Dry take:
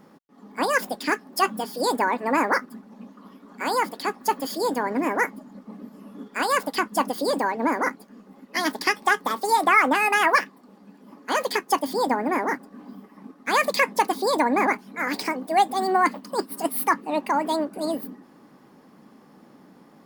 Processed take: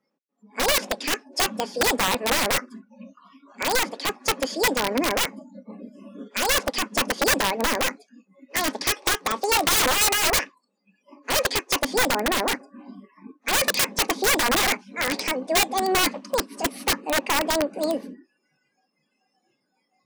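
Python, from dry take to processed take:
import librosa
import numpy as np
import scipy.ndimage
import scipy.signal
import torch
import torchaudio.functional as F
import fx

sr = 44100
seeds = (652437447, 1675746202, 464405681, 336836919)

y = fx.cabinet(x, sr, low_hz=170.0, low_slope=24, high_hz=8400.0, hz=(540.0, 2500.0, 6000.0), db=(8, 7, 6))
y = fx.noise_reduce_blind(y, sr, reduce_db=27)
y = (np.mod(10.0 ** (14.5 / 20.0) * y + 1.0, 2.0) - 1.0) / 10.0 ** (14.5 / 20.0)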